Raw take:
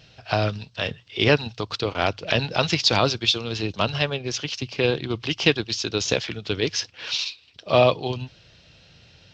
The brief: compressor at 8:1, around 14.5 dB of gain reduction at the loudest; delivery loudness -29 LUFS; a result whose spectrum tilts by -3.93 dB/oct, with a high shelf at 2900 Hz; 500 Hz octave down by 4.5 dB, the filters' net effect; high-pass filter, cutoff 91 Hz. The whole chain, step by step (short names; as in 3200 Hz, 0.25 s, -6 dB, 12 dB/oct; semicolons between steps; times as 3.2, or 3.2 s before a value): HPF 91 Hz; bell 500 Hz -5.5 dB; high shelf 2900 Hz -5 dB; compressor 8:1, threshold -30 dBFS; gain +6 dB